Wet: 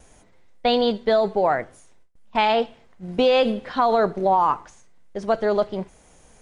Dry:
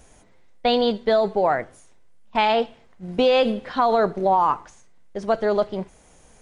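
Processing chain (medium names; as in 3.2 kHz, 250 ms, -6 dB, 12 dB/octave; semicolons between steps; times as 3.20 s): gate with hold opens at -46 dBFS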